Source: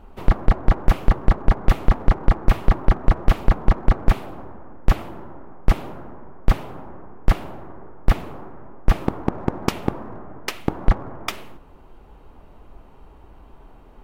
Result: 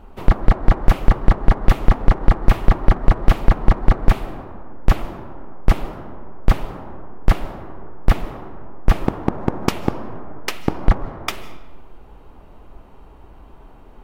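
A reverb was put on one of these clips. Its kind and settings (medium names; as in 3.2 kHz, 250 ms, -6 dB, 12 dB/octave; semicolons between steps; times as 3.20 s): algorithmic reverb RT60 1.3 s, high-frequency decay 0.65×, pre-delay 110 ms, DRR 17 dB; trim +2.5 dB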